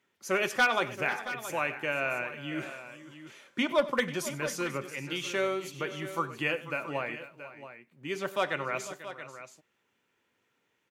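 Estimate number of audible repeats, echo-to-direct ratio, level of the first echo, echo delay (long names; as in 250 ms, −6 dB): 3, −10.0 dB, −17.5 dB, 96 ms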